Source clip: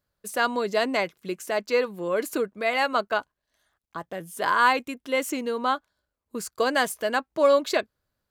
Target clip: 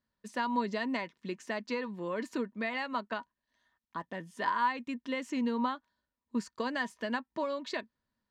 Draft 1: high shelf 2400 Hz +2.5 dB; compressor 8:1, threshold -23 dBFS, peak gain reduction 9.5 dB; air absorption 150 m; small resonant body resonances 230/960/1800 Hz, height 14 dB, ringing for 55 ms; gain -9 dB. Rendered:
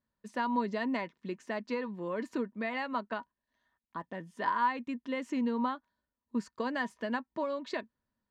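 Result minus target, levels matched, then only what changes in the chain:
4000 Hz band -4.0 dB
change: high shelf 2400 Hz +10.5 dB

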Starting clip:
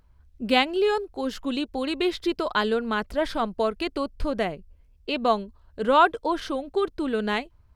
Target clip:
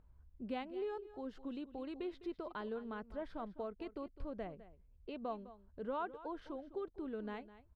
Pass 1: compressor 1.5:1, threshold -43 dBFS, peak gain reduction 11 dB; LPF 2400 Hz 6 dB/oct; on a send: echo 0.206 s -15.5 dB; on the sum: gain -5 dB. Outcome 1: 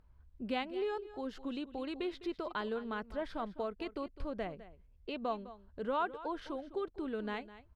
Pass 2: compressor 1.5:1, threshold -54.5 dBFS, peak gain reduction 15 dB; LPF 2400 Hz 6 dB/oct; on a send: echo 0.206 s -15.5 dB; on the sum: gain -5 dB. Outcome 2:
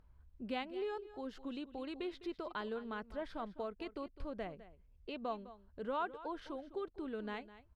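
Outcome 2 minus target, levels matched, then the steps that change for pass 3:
2000 Hz band +3.5 dB
change: LPF 900 Hz 6 dB/oct

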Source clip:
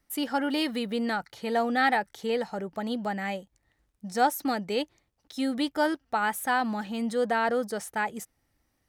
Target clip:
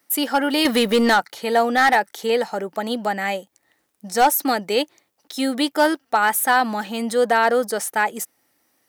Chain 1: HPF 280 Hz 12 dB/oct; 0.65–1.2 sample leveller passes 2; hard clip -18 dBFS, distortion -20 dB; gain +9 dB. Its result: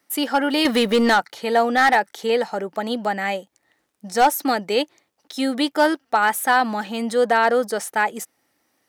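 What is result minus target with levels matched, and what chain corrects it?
8000 Hz band -4.0 dB
HPF 280 Hz 12 dB/oct; high shelf 9900 Hz +9.5 dB; 0.65–1.2 sample leveller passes 2; hard clip -18 dBFS, distortion -20 dB; gain +9 dB

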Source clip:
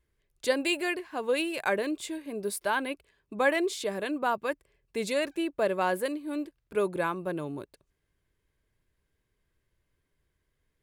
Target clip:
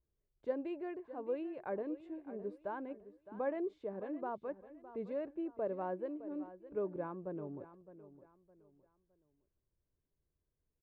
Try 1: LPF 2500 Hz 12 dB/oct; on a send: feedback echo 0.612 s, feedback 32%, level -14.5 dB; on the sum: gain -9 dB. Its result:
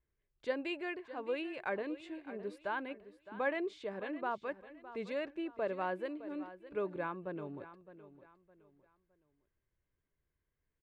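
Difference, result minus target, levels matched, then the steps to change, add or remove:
2000 Hz band +11.0 dB
change: LPF 780 Hz 12 dB/oct

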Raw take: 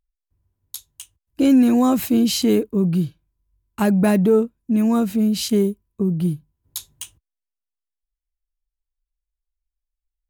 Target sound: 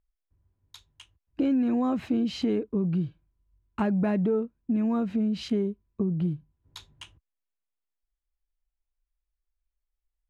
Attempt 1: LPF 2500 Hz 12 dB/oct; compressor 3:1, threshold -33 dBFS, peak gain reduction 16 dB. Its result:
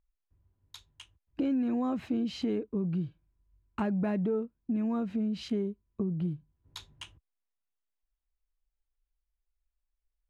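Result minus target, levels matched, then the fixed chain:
compressor: peak gain reduction +4.5 dB
LPF 2500 Hz 12 dB/oct; compressor 3:1, threshold -26 dBFS, peak gain reduction 11 dB

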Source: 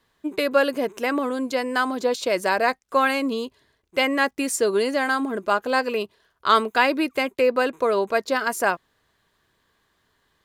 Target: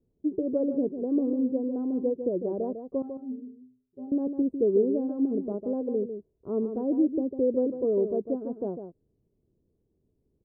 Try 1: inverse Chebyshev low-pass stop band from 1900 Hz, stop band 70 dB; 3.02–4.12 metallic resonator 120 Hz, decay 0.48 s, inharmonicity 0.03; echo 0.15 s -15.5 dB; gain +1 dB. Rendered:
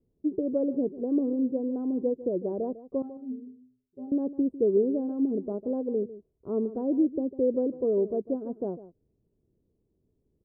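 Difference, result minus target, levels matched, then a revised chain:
echo-to-direct -7 dB
inverse Chebyshev low-pass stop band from 1900 Hz, stop band 70 dB; 3.02–4.12 metallic resonator 120 Hz, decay 0.48 s, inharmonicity 0.03; echo 0.15 s -8.5 dB; gain +1 dB

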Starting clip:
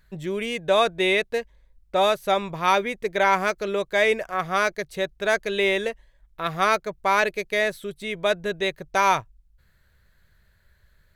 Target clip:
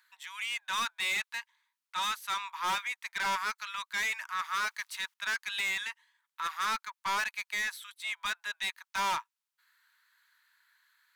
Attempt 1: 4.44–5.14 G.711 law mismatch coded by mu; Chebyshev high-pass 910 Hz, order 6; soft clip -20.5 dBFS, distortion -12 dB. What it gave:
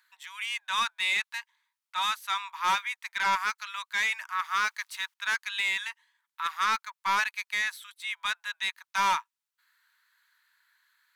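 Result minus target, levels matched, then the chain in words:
soft clip: distortion -6 dB
4.44–5.14 G.711 law mismatch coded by mu; Chebyshev high-pass 910 Hz, order 6; soft clip -28 dBFS, distortion -6 dB

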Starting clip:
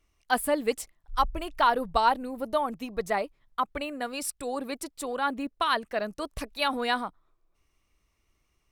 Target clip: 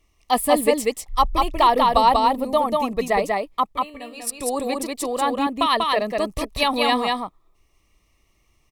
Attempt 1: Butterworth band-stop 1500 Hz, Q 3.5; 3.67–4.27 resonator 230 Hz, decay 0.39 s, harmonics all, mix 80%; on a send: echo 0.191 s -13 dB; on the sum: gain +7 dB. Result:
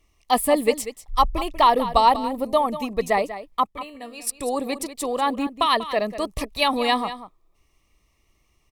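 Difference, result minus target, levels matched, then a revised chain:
echo-to-direct -10.5 dB
Butterworth band-stop 1500 Hz, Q 3.5; 3.67–4.27 resonator 230 Hz, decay 0.39 s, harmonics all, mix 80%; on a send: echo 0.191 s -2.5 dB; on the sum: gain +7 dB

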